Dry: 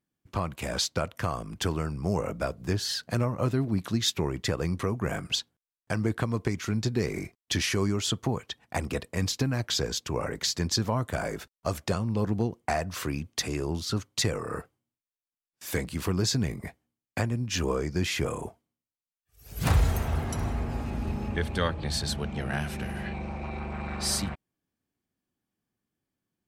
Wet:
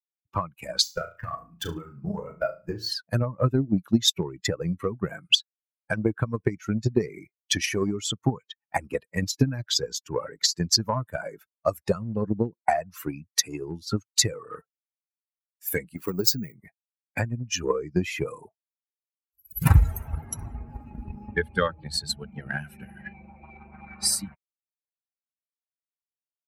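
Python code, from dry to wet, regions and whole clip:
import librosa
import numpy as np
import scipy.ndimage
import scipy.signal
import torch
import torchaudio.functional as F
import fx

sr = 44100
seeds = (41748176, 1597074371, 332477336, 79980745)

y = fx.chain(x, sr, fx.tube_stage(drive_db=17.0, bias=0.5),
    fx.room_flutter(wall_m=6.1, rt60_s=0.58),
    fx.resample_linear(factor=2), at=(0.83, 2.91))
y = fx.chain(y, sr, fx.highpass(hz=160.0, slope=6),
    fx.resample_bad(factor=2, down='filtered', up='hold'), at=(15.96, 16.55))
y = fx.bin_expand(y, sr, power=2.0)
y = fx.high_shelf(y, sr, hz=12000.0, db=7.5)
y = fx.transient(y, sr, attack_db=8, sustain_db=0)
y = F.gain(torch.from_numpy(y), 4.0).numpy()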